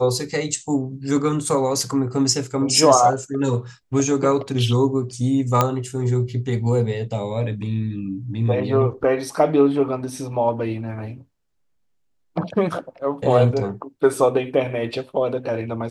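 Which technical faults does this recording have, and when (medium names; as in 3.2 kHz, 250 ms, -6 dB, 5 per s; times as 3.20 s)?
5.61 s: pop -3 dBFS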